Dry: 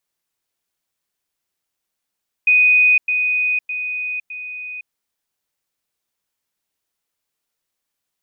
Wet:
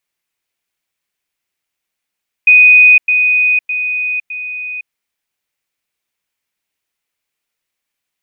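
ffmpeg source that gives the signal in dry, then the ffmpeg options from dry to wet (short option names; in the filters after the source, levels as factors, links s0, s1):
-f lavfi -i "aevalsrc='pow(10,(-9.5-6*floor(t/0.61))/20)*sin(2*PI*2490*t)*clip(min(mod(t,0.61),0.51-mod(t,0.61))/0.005,0,1)':d=2.44:s=44100"
-af "equalizer=f=2300:w=1.6:g=7.5"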